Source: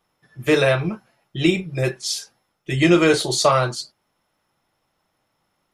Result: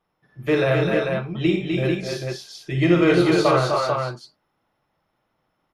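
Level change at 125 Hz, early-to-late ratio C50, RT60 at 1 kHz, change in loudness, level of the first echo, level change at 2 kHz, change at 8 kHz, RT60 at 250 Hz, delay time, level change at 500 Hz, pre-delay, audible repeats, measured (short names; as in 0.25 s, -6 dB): +1.0 dB, none, none, -1.0 dB, -6.5 dB, -2.0 dB, -12.0 dB, none, 53 ms, 0.0 dB, none, 5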